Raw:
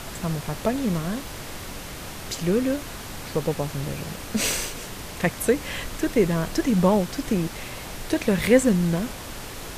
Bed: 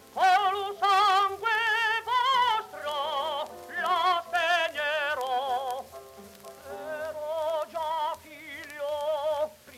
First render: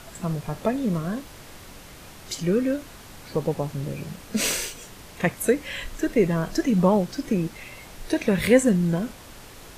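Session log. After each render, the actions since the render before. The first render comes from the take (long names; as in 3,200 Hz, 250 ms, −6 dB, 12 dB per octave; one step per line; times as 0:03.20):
noise reduction from a noise print 8 dB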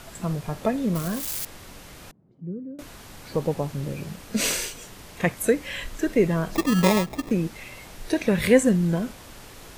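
0:00.95–0:01.45: spike at every zero crossing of −22.5 dBFS
0:02.11–0:02.79: four-pole ladder band-pass 190 Hz, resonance 35%
0:06.55–0:07.31: sample-rate reduction 1,500 Hz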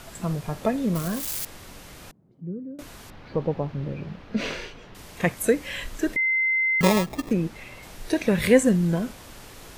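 0:03.10–0:04.95: high-frequency loss of the air 270 metres
0:06.16–0:06.81: beep over 2,070 Hz −19.5 dBFS
0:07.33–0:07.83: high-shelf EQ 4,300 Hz −7 dB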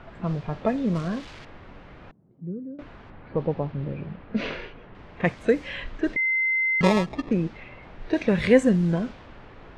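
Bessel low-pass filter 3,900 Hz, order 2
low-pass that shuts in the quiet parts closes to 1,900 Hz, open at −16.5 dBFS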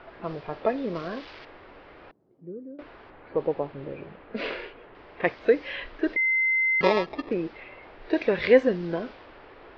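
elliptic low-pass filter 5,100 Hz, stop band 60 dB
low shelf with overshoot 260 Hz −9.5 dB, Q 1.5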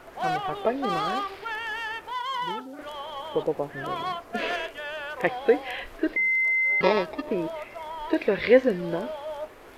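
mix in bed −6.5 dB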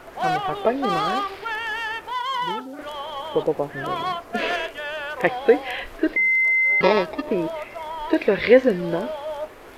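level +4.5 dB
brickwall limiter −2 dBFS, peak gain reduction 1.5 dB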